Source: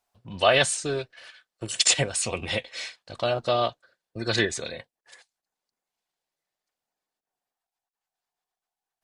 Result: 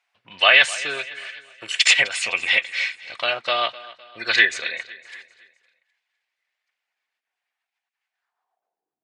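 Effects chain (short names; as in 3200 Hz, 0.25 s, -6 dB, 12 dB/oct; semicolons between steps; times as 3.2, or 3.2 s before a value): band-pass sweep 2200 Hz -> 260 Hz, 8.11–8.99; feedback echo 0.255 s, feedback 45%, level -18.5 dB; maximiser +17 dB; gain -1.5 dB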